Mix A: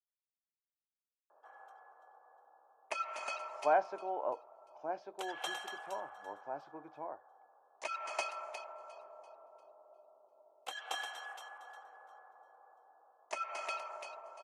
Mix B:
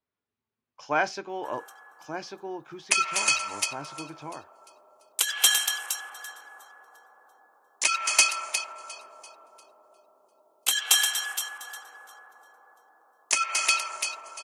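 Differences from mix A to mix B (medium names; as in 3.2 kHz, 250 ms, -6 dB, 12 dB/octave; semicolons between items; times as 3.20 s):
speech: entry -2.75 s; master: remove band-pass filter 660 Hz, Q 2.2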